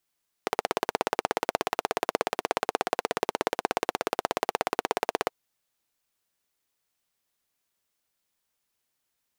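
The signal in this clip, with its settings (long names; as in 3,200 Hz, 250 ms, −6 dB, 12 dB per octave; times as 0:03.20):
pulse-train model of a single-cylinder engine, steady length 4.83 s, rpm 2,000, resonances 460/710 Hz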